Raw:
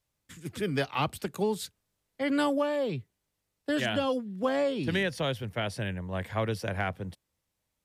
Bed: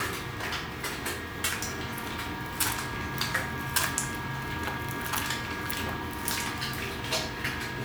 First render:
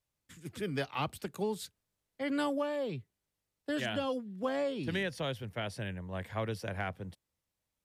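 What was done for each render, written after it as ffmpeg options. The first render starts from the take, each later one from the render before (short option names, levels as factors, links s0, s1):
-af "volume=0.531"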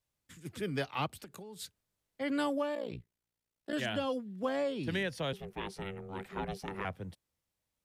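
-filter_complex "[0:a]asplit=3[s0][s1][s2];[s0]afade=t=out:st=1.06:d=0.02[s3];[s1]acompressor=threshold=0.00708:ratio=20:attack=3.2:release=140:knee=1:detection=peak,afade=t=in:st=1.06:d=0.02,afade=t=out:st=1.59:d=0.02[s4];[s2]afade=t=in:st=1.59:d=0.02[s5];[s3][s4][s5]amix=inputs=3:normalize=0,asettb=1/sr,asplit=3[s6][s7][s8];[s6]atrim=end=2.754[s9];[s7]atrim=start=2.75:end=3.73,asetpts=PTS-STARTPTS,afade=t=in:d=0.004:c=qsin,afade=t=out:st=0.976:d=0.004:c=qsin,tremolo=f=59:d=0.974[s10];[s8]atrim=start=3.726[s11];[s9][s10]acrossfade=d=0.004:c1=hsin:c2=qsin[s12];[s12][s11]acrossfade=d=0.004:c1=qsin:c2=hsin,asettb=1/sr,asplit=3[s13][s14][s15];[s13]atrim=end=5.334[s16];[s14]atrim=start=5.33:end=6.85,asetpts=PTS-STARTPTS,afade=t=in:d=0.004:c=qsin,afade=t=out:st=1.516:d=0.004:c=qsin,aeval=exprs='val(0)*sin(2*PI*290*n/s)':c=same[s17];[s15]atrim=start=6.846[s18];[s16][s17]acrossfade=d=0.004:c1=hsin:c2=qsin[s19];[s19][s18]acrossfade=d=0.004:c1=qsin:c2=hsin"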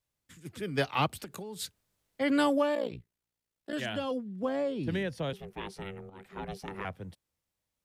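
-filter_complex "[0:a]asplit=3[s0][s1][s2];[s0]afade=t=out:st=0.77:d=0.02[s3];[s1]acontrast=61,afade=t=in:st=0.77:d=0.02,afade=t=out:st=2.87:d=0.02[s4];[s2]afade=t=in:st=2.87:d=0.02[s5];[s3][s4][s5]amix=inputs=3:normalize=0,asettb=1/sr,asplit=3[s6][s7][s8];[s6]atrim=end=4.114[s9];[s7]atrim=start=4.11:end=5.3,asetpts=PTS-STARTPTS,afade=t=in:d=0.004:c=qsin,afade=t=out:st=1.186:d=0.004:c=qsin,tiltshelf=f=870:g=4[s10];[s8]atrim=start=5.296[s11];[s9][s10]acrossfade=d=0.004:c1=hsin:c2=qsin[s12];[s12][s11]acrossfade=d=0.004:c1=qsin:c2=hsin,asplit=2[s13][s14];[s13]atrim=end=6.1,asetpts=PTS-STARTPTS,afade=t=out:st=6.096:d=0.004:c=hsin:silence=0.237137[s15];[s14]atrim=start=6.1,asetpts=PTS-STARTPTS,afade=t=in:d=0.44:silence=0.237137[s16];[s15][s16]concat=n=2:v=0:a=1"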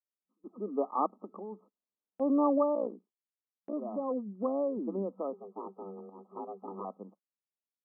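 -af "afftfilt=real='re*between(b*sr/4096,190,1300)':imag='im*between(b*sr/4096,190,1300)':win_size=4096:overlap=0.75,agate=range=0.126:threshold=0.00126:ratio=16:detection=peak"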